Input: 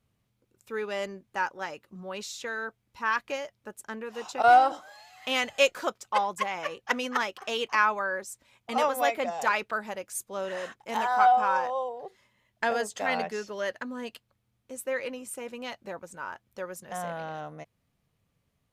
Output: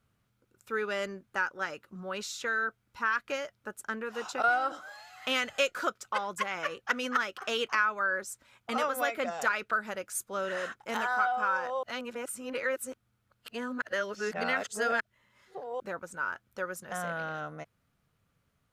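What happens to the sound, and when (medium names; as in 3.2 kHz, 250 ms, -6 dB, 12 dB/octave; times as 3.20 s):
11.83–15.80 s: reverse
whole clip: peaking EQ 1.4 kHz +10 dB 0.43 oct; compression 2.5:1, threshold -25 dBFS; dynamic bell 860 Hz, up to -7 dB, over -43 dBFS, Q 2.4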